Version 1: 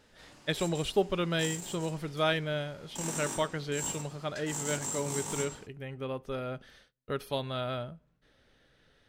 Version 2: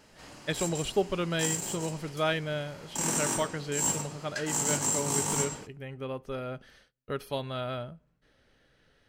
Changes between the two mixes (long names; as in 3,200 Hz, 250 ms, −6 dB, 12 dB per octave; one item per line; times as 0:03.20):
background +7.5 dB
master: add notch filter 3,600 Hz, Q 14